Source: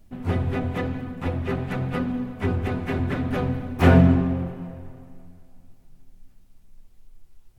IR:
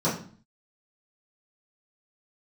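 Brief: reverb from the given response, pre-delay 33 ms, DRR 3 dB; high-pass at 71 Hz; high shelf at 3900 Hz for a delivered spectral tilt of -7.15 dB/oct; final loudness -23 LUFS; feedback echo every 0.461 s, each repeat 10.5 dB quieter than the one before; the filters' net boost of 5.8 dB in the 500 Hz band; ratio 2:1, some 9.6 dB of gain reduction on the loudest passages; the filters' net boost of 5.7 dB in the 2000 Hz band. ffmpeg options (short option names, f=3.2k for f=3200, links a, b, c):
-filter_complex "[0:a]highpass=71,equalizer=f=500:t=o:g=7,equalizer=f=2k:t=o:g=8,highshelf=f=3.9k:g=-4.5,acompressor=threshold=-26dB:ratio=2,aecho=1:1:461|922|1383:0.299|0.0896|0.0269,asplit=2[a][b];[1:a]atrim=start_sample=2205,adelay=33[c];[b][c]afir=irnorm=-1:irlink=0,volume=-16dB[d];[a][d]amix=inputs=2:normalize=0,volume=-2dB"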